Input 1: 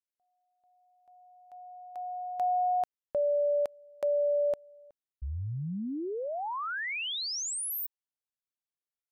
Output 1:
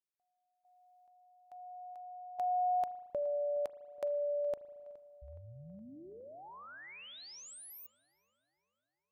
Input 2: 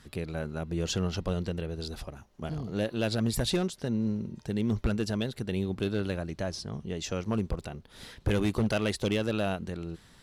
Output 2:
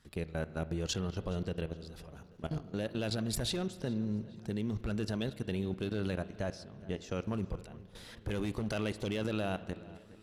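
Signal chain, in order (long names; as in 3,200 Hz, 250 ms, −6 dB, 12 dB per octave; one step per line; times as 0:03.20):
output level in coarse steps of 17 dB
feedback echo with a low-pass in the loop 418 ms, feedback 58%, low-pass 3,700 Hz, level −19.5 dB
spring reverb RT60 1.5 s, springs 37 ms, chirp 35 ms, DRR 15 dB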